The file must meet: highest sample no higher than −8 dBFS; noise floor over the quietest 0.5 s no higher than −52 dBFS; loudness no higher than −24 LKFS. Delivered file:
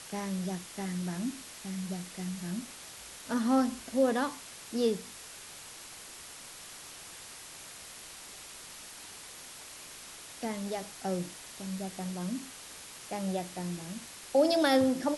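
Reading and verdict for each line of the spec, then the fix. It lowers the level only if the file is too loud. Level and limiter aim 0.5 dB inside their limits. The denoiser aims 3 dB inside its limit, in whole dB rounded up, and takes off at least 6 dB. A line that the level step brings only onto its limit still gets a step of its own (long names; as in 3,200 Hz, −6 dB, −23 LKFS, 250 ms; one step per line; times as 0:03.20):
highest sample −14.5 dBFS: in spec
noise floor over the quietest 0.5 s −48 dBFS: out of spec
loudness −34.0 LKFS: in spec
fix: broadband denoise 7 dB, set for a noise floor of −48 dBFS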